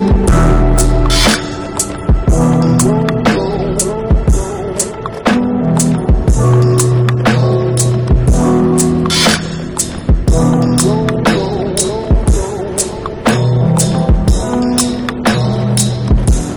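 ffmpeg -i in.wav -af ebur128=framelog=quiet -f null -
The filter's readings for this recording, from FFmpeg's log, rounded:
Integrated loudness:
  I:         -12.5 LUFS
  Threshold: -22.5 LUFS
Loudness range:
  LRA:         2.3 LU
  Threshold: -32.6 LUFS
  LRA low:   -13.5 LUFS
  LRA high:  -11.3 LUFS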